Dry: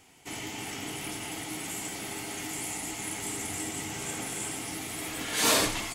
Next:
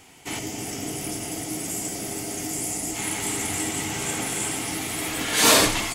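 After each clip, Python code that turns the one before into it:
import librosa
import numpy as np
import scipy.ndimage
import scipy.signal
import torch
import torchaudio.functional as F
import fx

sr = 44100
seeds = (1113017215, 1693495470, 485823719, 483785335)

y = fx.spec_box(x, sr, start_s=0.39, length_s=2.56, low_hz=760.0, high_hz=4600.0, gain_db=-8)
y = y * 10.0 ** (7.5 / 20.0)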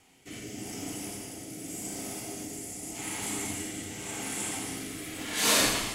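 y = fx.rotary(x, sr, hz=0.85)
y = fx.rev_schroeder(y, sr, rt60_s=1.0, comb_ms=30, drr_db=1.5)
y = y * 10.0 ** (-8.0 / 20.0)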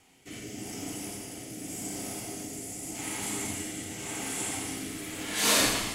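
y = x + 10.0 ** (-8.0 / 20.0) * np.pad(x, (int(1040 * sr / 1000.0), 0))[:len(x)]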